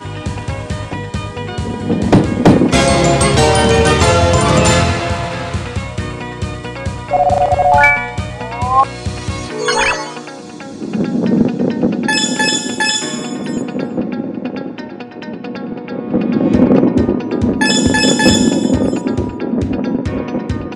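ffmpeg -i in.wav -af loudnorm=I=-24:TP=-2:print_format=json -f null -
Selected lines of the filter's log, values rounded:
"input_i" : "-14.6",
"input_tp" : "-1.1",
"input_lra" : "4.9",
"input_thresh" : "-24.8",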